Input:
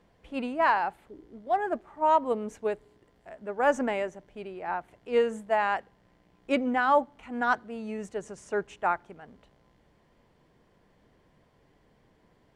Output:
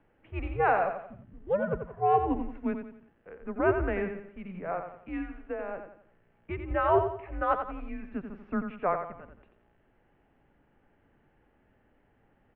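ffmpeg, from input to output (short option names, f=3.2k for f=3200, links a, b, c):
-filter_complex "[0:a]highpass=f=160:t=q:w=0.5412,highpass=f=160:t=q:w=1.307,lowpass=f=2.9k:t=q:w=0.5176,lowpass=f=2.9k:t=q:w=0.7071,lowpass=f=2.9k:t=q:w=1.932,afreqshift=-190,asettb=1/sr,asplit=3[a][b][c];[a]atrim=end=4.944[d];[b]atrim=start=4.94:end=6.71,asetpts=PTS-STARTPTS,afade=t=in:d=0.004:c=qsin,afade=t=out:st=1.766:d=0.004:c=qsin,acrossover=split=87|550[e][f][g];[e]acompressor=threshold=-45dB:ratio=4[h];[f]acompressor=threshold=-35dB:ratio=4[i];[g]acompressor=threshold=-42dB:ratio=4[j];[h][i][j]amix=inputs=3:normalize=0[k];[c]atrim=start=6.706[l];[d][k]acrossfade=d=0.004:c1=hsin:c2=qsin[m];[m][l]acrossfade=d=0.004:c1=qsin:c2=hsin,aecho=1:1:88|176|264|352:0.422|0.164|0.0641|0.025,volume=-1.5dB"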